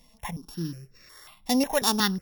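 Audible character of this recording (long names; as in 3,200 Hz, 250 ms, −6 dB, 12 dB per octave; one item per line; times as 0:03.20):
a buzz of ramps at a fixed pitch in blocks of 8 samples
notches that jump at a steady rate 5.5 Hz 400–3,100 Hz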